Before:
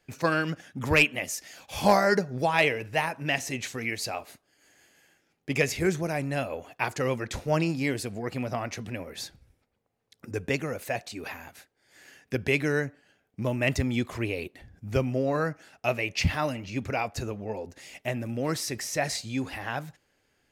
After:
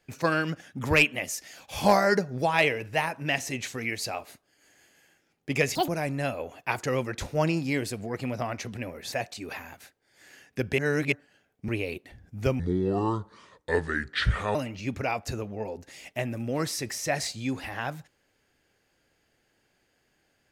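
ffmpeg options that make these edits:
ffmpeg -i in.wav -filter_complex "[0:a]asplit=9[link_01][link_02][link_03][link_04][link_05][link_06][link_07][link_08][link_09];[link_01]atrim=end=5.754[link_10];[link_02]atrim=start=5.75:end=6.01,asetpts=PTS-STARTPTS,asetrate=86436,aresample=44100[link_11];[link_03]atrim=start=6.006:end=9.252[link_12];[link_04]atrim=start=10.868:end=12.532[link_13];[link_05]atrim=start=12.528:end=12.872,asetpts=PTS-STARTPTS,areverse[link_14];[link_06]atrim=start=12.868:end=13.432[link_15];[link_07]atrim=start=14.178:end=15.094[link_16];[link_08]atrim=start=15.09:end=16.44,asetpts=PTS-STARTPTS,asetrate=30429,aresample=44100[link_17];[link_09]atrim=start=16.436[link_18];[link_10][link_11]acrossfade=duration=0.004:curve1=hsin:curve2=hsin[link_19];[link_19][link_12]acrossfade=duration=0.004:curve1=hsin:curve2=hsin[link_20];[link_20][link_13]acrossfade=duration=0.004:curve1=hsin:curve2=hsin[link_21];[link_21][link_14]acrossfade=duration=0.004:curve1=hsin:curve2=hsin[link_22];[link_22][link_15]acrossfade=duration=0.004:curve1=hsin:curve2=hsin[link_23];[link_23][link_16]acrossfade=duration=0.004:curve1=hsin:curve2=hsin[link_24];[link_24][link_17]acrossfade=duration=0.004:curve1=hsin:curve2=hsin[link_25];[link_25][link_18]acrossfade=duration=0.004:curve1=hsin:curve2=hsin" out.wav

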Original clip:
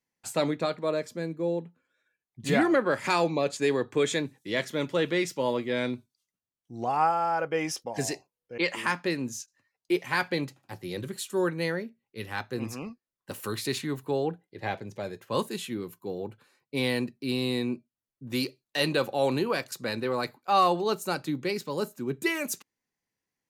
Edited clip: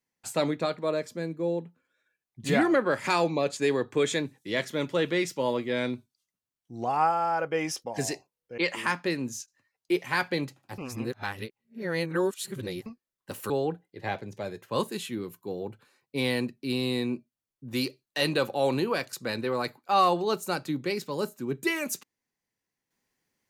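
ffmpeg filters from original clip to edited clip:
ffmpeg -i in.wav -filter_complex "[0:a]asplit=4[link_01][link_02][link_03][link_04];[link_01]atrim=end=10.782[link_05];[link_02]atrim=start=10.778:end=12.862,asetpts=PTS-STARTPTS,areverse[link_06];[link_03]atrim=start=12.858:end=13.502[link_07];[link_04]atrim=start=14.088[link_08];[link_05][link_06]acrossfade=duration=0.004:curve1=hsin:curve2=hsin[link_09];[link_09][link_07]acrossfade=duration=0.004:curve1=hsin:curve2=hsin[link_10];[link_10][link_08]acrossfade=duration=0.004:curve1=hsin:curve2=hsin" out.wav

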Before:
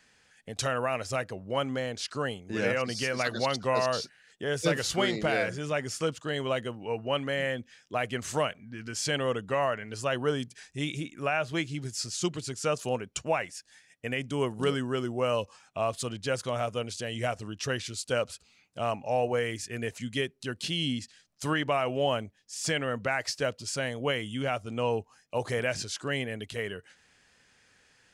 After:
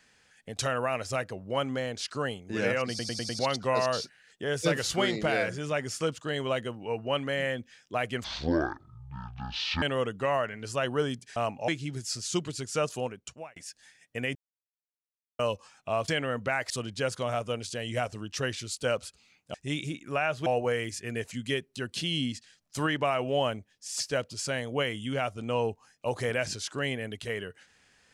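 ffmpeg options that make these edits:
ffmpeg -i in.wav -filter_complex "[0:a]asplit=18[link_01][link_02][link_03][link_04][link_05][link_06][link_07][link_08][link_09][link_10][link_11][link_12][link_13][link_14][link_15][link_16][link_17][link_18];[link_01]atrim=end=2.992[link_19];[link_02]atrim=start=2.888:end=2.992[link_20];[link_03]atrim=start=2.888:end=2.992[link_21];[link_04]atrim=start=2.888:end=2.992[link_22];[link_05]atrim=start=2.888:end=2.992[link_23];[link_06]atrim=start=3.388:end=8.244[link_24];[link_07]atrim=start=8.24:end=9.11,asetpts=PTS-STARTPTS,asetrate=24255,aresample=44100,atrim=end_sample=69758,asetpts=PTS-STARTPTS[link_25];[link_08]atrim=start=9.106:end=10.652[link_26];[link_09]atrim=start=18.808:end=19.132[link_27];[link_10]atrim=start=11.568:end=13.45,asetpts=PTS-STARTPTS,afade=type=out:start_time=1.172:duration=0.71[link_28];[link_11]atrim=start=13.45:end=14.24,asetpts=PTS-STARTPTS,afade=type=in:duration=0.004:curve=hsin,afade=type=out:start_time=0.786:duration=0.004:curve=hsin[link_29];[link_12]atrim=start=14.24:end=15.28,asetpts=PTS-STARTPTS,volume=0[link_30];[link_13]atrim=start=15.28:end=15.972,asetpts=PTS-STARTPTS,afade=type=in:duration=0.004:curve=hsin[link_31];[link_14]atrim=start=22.668:end=23.292[link_32];[link_15]atrim=start=15.968:end=18.812[link_33];[link_16]atrim=start=10.648:end=11.572[link_34];[link_17]atrim=start=19.128:end=22.672[link_35];[link_18]atrim=start=23.288[link_36];[link_19][link_20]acrossfade=duration=0.004:curve1=hsin:curve2=hsin[link_37];[link_37][link_21]acrossfade=duration=0.004:curve1=hsin:curve2=hsin[link_38];[link_38][link_22]acrossfade=duration=0.004:curve1=hsin:curve2=hsin[link_39];[link_39][link_23]acrossfade=duration=0.004:curve1=hsin:curve2=hsin[link_40];[link_40][link_24]acrossfade=duration=0.004:curve1=hsin:curve2=hsin[link_41];[link_41][link_25]acrossfade=duration=0.004:curve1=hsin:curve2=hsin[link_42];[link_42][link_26]acrossfade=duration=0.004:curve1=hsin:curve2=hsin[link_43];[link_43][link_27]acrossfade=duration=0.004:curve1=hsin:curve2=hsin[link_44];[link_28][link_29][link_30][link_31]concat=n=4:v=0:a=1[link_45];[link_44][link_45]acrossfade=duration=0.004:curve1=hsin:curve2=hsin[link_46];[link_46][link_32]acrossfade=duration=0.004:curve1=hsin:curve2=hsin[link_47];[link_47][link_33]acrossfade=duration=0.004:curve1=hsin:curve2=hsin[link_48];[link_48][link_34]acrossfade=duration=0.004:curve1=hsin:curve2=hsin[link_49];[link_49][link_35]acrossfade=duration=0.004:curve1=hsin:curve2=hsin[link_50];[link_50][link_36]acrossfade=duration=0.004:curve1=hsin:curve2=hsin" out.wav

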